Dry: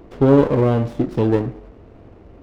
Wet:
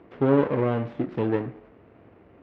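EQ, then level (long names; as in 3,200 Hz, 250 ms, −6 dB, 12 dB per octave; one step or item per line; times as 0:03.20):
band-pass filter 110–2,800 Hz
parametric band 2,100 Hz +6.5 dB 1.7 octaves
−7.5 dB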